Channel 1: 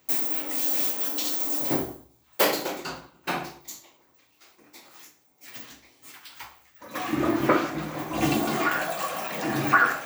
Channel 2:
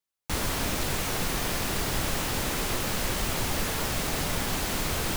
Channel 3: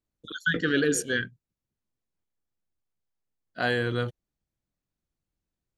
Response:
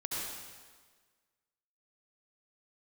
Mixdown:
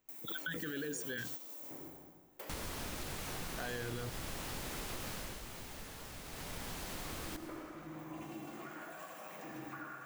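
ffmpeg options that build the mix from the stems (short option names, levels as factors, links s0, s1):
-filter_complex "[0:a]equalizer=f=4300:t=o:w=0.76:g=-5.5,acompressor=threshold=0.0251:ratio=4,volume=0.596,asplit=2[s0][s1];[s1]volume=0.178[s2];[1:a]adelay=2200,volume=0.794,afade=t=out:st=5.11:d=0.29:silence=0.266073,afade=t=in:st=6.26:d=0.39:silence=0.398107,asplit=2[s3][s4];[s4]volume=0.237[s5];[2:a]volume=0.891,asplit=2[s6][s7];[s7]apad=whole_len=443402[s8];[s0][s8]sidechaingate=range=0.126:threshold=0.00562:ratio=16:detection=peak[s9];[s9][s6]amix=inputs=2:normalize=0,alimiter=limit=0.0708:level=0:latency=1:release=31,volume=1[s10];[3:a]atrim=start_sample=2205[s11];[s2][s5]amix=inputs=2:normalize=0[s12];[s12][s11]afir=irnorm=-1:irlink=0[s13];[s3][s10][s13]amix=inputs=3:normalize=0,acompressor=threshold=0.01:ratio=3"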